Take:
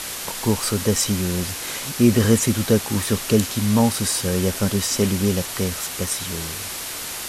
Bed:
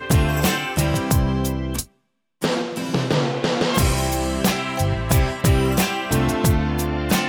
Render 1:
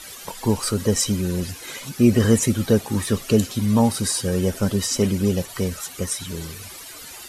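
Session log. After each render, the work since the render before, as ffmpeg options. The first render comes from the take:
-af "afftdn=nr=14:nf=-31"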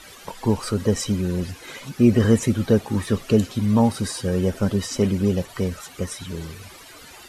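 -af "highshelf=f=4.9k:g=-11.5"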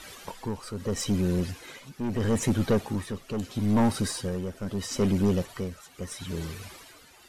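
-af "aeval=exprs='(tanh(7.08*val(0)+0.3)-tanh(0.3))/7.08':c=same,tremolo=f=0.77:d=0.7"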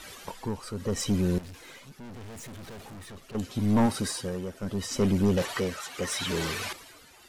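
-filter_complex "[0:a]asettb=1/sr,asplit=3[a][b][c];[a]atrim=end=1.384[d];[b]atrim=start=1.38:end=3.35,asetpts=PTS-STARTPTS,afade=t=in:d=0.004:c=qsin,afade=t=out:st=1.966:d=0.004:c=qsin,aeval=exprs='(tanh(126*val(0)+0.35)-tanh(0.35))/126':c=same[e];[c]atrim=start=3.346[f];[d][e]acrossfade=d=0.004:c1=hsin:c2=qsin[g];[g][f]acrossfade=d=0.004:c1=qsin:c2=hsin,asettb=1/sr,asplit=3[h][i][j];[h]atrim=end=3.864[k];[i]atrim=start=3.86:end=4.63,asetpts=PTS-STARTPTS,afade=t=in:d=0.004:c=qsin,afade=t=out:st=0.766:d=0.004:c=qsin,lowshelf=f=150:g=-7[l];[j]atrim=start=4.626[m];[k][l]acrossfade=d=0.004:c1=hsin:c2=qsin[n];[n][m]acrossfade=d=0.004:c1=qsin:c2=hsin,asettb=1/sr,asplit=3[o][p][q];[o]atrim=end=5.374[r];[p]atrim=start=5.37:end=6.73,asetpts=PTS-STARTPTS,afade=t=in:d=0.004:c=qsin,afade=t=out:st=1.356:d=0.004:c=qsin,asplit=2[s][t];[t]highpass=f=720:p=1,volume=20dB,asoftclip=type=tanh:threshold=-17dB[u];[s][u]amix=inputs=2:normalize=0,lowpass=f=4.8k:p=1,volume=-6dB[v];[q]atrim=start=6.726[w];[r][v]acrossfade=d=0.004:c1=hsin:c2=qsin[x];[x][w]acrossfade=d=0.004:c1=qsin:c2=hsin"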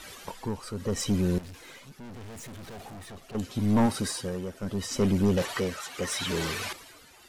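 -filter_complex "[0:a]asettb=1/sr,asplit=3[a][b][c];[a]atrim=end=2.734[d];[b]atrim=start=2.73:end=3.35,asetpts=PTS-STARTPTS,afade=t=in:d=0.004:c=qsin,afade=t=out:st=0.616:d=0.004:c=qsin,equalizer=f=720:w=5:g=8.5[e];[c]atrim=start=3.346[f];[d][e]acrossfade=d=0.004:c1=hsin:c2=qsin[g];[g][f]acrossfade=d=0.004:c1=qsin:c2=hsin"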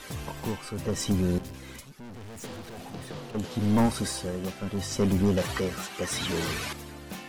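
-filter_complex "[1:a]volume=-20.5dB[a];[0:a][a]amix=inputs=2:normalize=0"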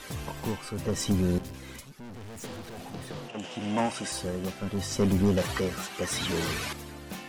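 -filter_complex "[0:a]asettb=1/sr,asplit=3[a][b][c];[a]atrim=end=3.284[d];[b]atrim=start=3.28:end=4.12,asetpts=PTS-STARTPTS,afade=t=in:d=0.004:c=qsin,afade=t=out:st=0.836:d=0.004:c=qsin,highpass=220,equalizer=f=230:t=q:w=4:g=-5,equalizer=f=430:t=q:w=4:g=-8,equalizer=f=670:t=q:w=4:g=4,equalizer=f=1.2k:t=q:w=4:g=-3,equalizer=f=2.8k:t=q:w=4:g=9,equalizer=f=4.2k:t=q:w=4:g=-9,lowpass=f=8.8k:w=0.5412,lowpass=f=8.8k:w=1.3066[e];[c]atrim=start=4.116[f];[d][e]acrossfade=d=0.004:c1=hsin:c2=qsin[g];[g][f]acrossfade=d=0.004:c1=qsin:c2=hsin"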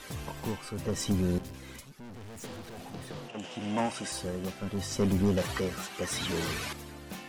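-af "volume=-2.5dB"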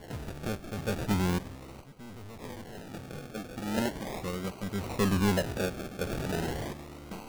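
-af "acrusher=samples=35:mix=1:aa=0.000001:lfo=1:lforange=21:lforate=0.38"

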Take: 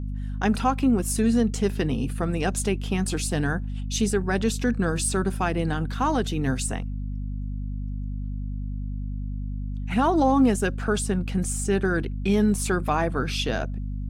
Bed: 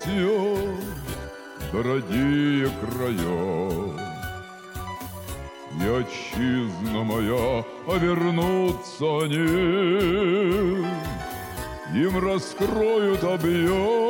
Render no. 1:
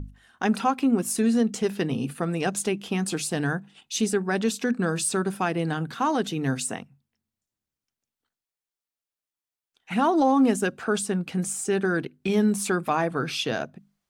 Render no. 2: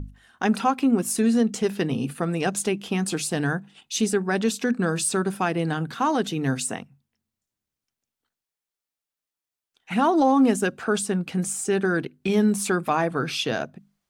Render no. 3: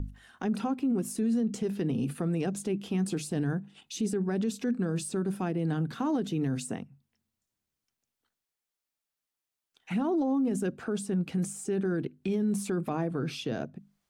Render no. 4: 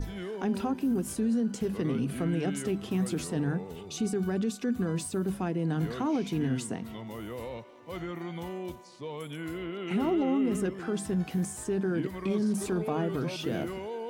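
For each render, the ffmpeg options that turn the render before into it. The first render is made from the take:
-af "bandreject=f=50:t=h:w=6,bandreject=f=100:t=h:w=6,bandreject=f=150:t=h:w=6,bandreject=f=200:t=h:w=6,bandreject=f=250:t=h:w=6"
-af "volume=1.5dB"
-filter_complex "[0:a]acrossover=split=470[a][b];[b]acompressor=threshold=-48dB:ratio=2[c];[a][c]amix=inputs=2:normalize=0,alimiter=limit=-22dB:level=0:latency=1:release=30"
-filter_complex "[1:a]volume=-15.5dB[a];[0:a][a]amix=inputs=2:normalize=0"

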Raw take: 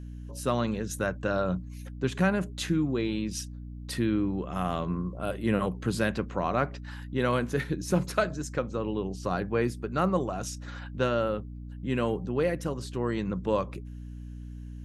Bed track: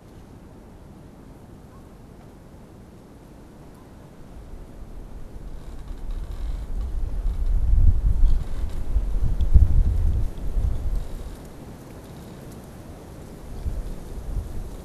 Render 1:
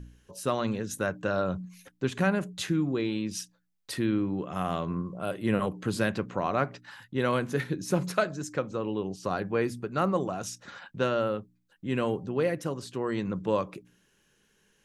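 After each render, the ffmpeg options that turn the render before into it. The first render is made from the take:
-af "bandreject=f=60:t=h:w=4,bandreject=f=120:t=h:w=4,bandreject=f=180:t=h:w=4,bandreject=f=240:t=h:w=4,bandreject=f=300:t=h:w=4"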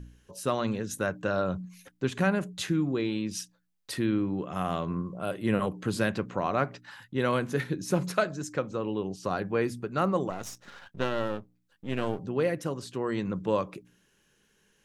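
-filter_complex "[0:a]asettb=1/sr,asplit=3[a][b][c];[a]atrim=end=10.304[d];[b]atrim=start=10.3:end=12.19,asetpts=PTS-STARTPTS,afade=t=in:d=0.004:c=qsin,afade=t=out:st=1.886:d=0.004:c=qsin,aeval=exprs='if(lt(val(0),0),0.251*val(0),val(0))':c=same[e];[c]atrim=start=12.186[f];[d][e]acrossfade=d=0.004:c1=hsin:c2=qsin[g];[g][f]acrossfade=d=0.004:c1=qsin:c2=hsin"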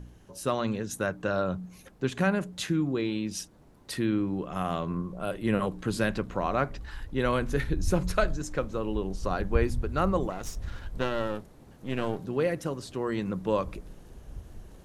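-filter_complex "[1:a]volume=-13dB[a];[0:a][a]amix=inputs=2:normalize=0"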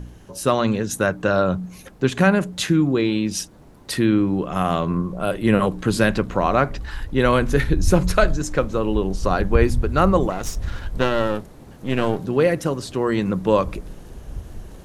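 -af "volume=9.5dB,alimiter=limit=-3dB:level=0:latency=1"

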